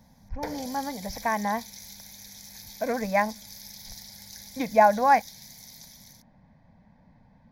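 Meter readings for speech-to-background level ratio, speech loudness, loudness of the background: 17.0 dB, -25.5 LUFS, -42.5 LUFS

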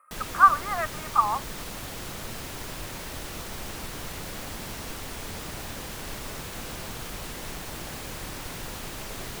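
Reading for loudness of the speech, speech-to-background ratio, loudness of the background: -23.0 LUFS, 13.5 dB, -36.5 LUFS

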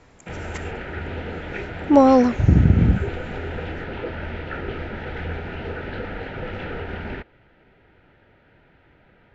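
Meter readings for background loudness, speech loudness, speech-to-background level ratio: -31.5 LUFS, -16.5 LUFS, 15.0 dB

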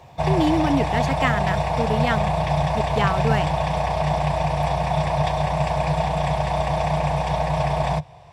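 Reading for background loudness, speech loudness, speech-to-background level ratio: -22.5 LUFS, -25.5 LUFS, -3.0 dB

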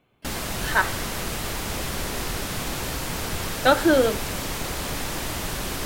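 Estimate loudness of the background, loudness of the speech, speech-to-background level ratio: -29.0 LUFS, -22.0 LUFS, 7.0 dB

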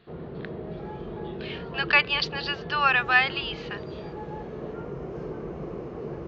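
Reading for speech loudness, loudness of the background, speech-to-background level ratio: -23.5 LUFS, -37.0 LUFS, 13.5 dB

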